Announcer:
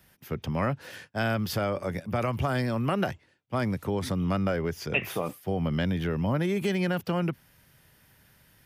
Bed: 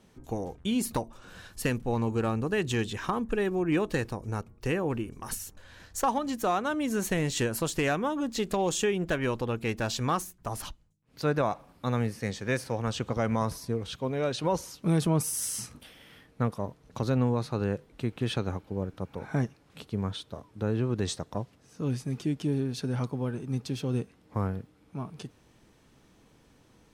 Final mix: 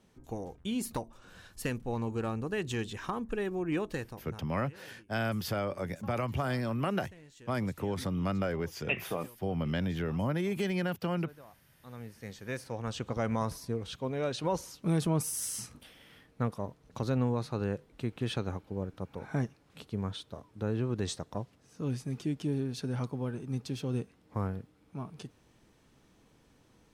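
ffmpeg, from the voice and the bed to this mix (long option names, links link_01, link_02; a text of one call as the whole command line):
ffmpeg -i stem1.wav -i stem2.wav -filter_complex "[0:a]adelay=3950,volume=-4.5dB[link_01];[1:a]volume=17.5dB,afade=type=out:start_time=3.8:duration=0.77:silence=0.0891251,afade=type=in:start_time=11.76:duration=1.47:silence=0.0707946[link_02];[link_01][link_02]amix=inputs=2:normalize=0" out.wav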